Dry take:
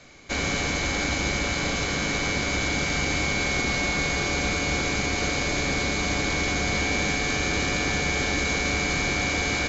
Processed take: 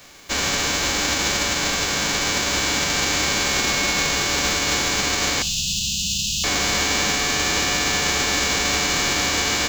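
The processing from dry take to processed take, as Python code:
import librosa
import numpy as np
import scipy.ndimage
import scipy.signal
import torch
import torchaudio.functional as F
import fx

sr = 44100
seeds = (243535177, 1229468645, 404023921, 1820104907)

y = fx.envelope_flatten(x, sr, power=0.3)
y = fx.brickwall_bandstop(y, sr, low_hz=230.0, high_hz=2500.0, at=(5.42, 6.44))
y = fx.rev_double_slope(y, sr, seeds[0], early_s=0.46, late_s=2.4, knee_db=-20, drr_db=18.0)
y = y * librosa.db_to_amplitude(4.0)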